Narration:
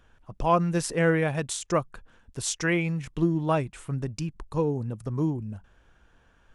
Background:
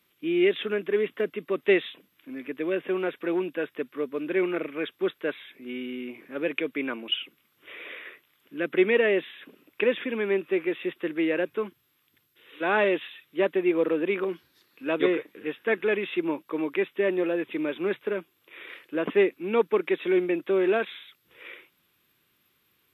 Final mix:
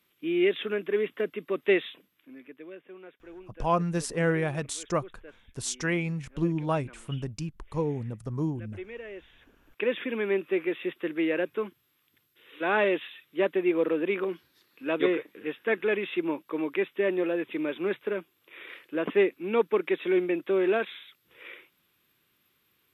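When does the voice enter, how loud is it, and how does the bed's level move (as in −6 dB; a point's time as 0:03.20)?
3.20 s, −3.0 dB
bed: 0:01.95 −2 dB
0:02.85 −19.5 dB
0:09.09 −19.5 dB
0:09.99 −1.5 dB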